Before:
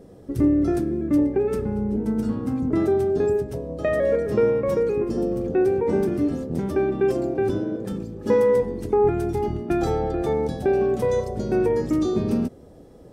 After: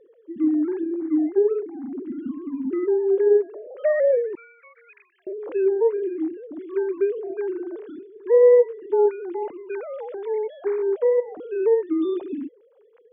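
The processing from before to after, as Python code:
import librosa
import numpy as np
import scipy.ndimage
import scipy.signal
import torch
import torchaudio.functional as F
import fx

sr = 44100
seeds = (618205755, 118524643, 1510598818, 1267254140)

y = fx.sine_speech(x, sr)
y = fx.highpass(y, sr, hz=1500.0, slope=24, at=(4.35, 5.27))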